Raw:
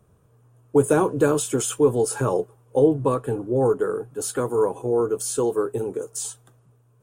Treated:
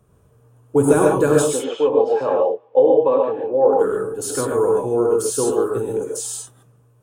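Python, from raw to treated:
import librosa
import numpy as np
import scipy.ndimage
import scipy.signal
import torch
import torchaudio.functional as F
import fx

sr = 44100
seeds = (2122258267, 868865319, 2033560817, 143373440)

y = fx.cabinet(x, sr, low_hz=370.0, low_slope=12, high_hz=3400.0, hz=(380.0, 530.0, 810.0, 1400.0), db=(-6, 9, 4, -9), at=(1.49, 3.73))
y = fx.rev_gated(y, sr, seeds[0], gate_ms=160, shape='rising', drr_db=-0.5)
y = y * librosa.db_to_amplitude(1.0)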